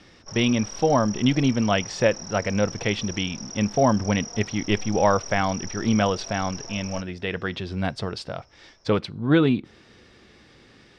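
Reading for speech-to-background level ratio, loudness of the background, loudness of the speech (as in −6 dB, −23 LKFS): 12.0 dB, −36.5 LKFS, −24.5 LKFS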